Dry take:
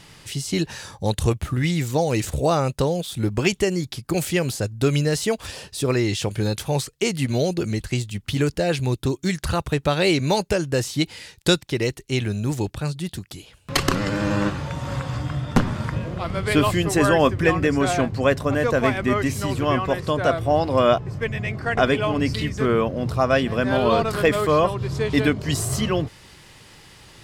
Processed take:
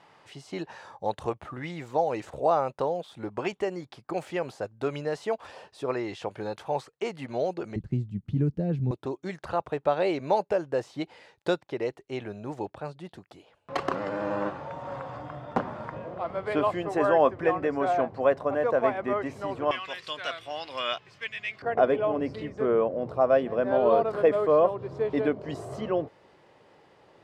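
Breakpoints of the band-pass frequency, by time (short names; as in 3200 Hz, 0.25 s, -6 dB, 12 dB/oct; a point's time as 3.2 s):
band-pass, Q 1.5
810 Hz
from 7.76 s 180 Hz
from 8.91 s 710 Hz
from 19.71 s 3000 Hz
from 21.62 s 570 Hz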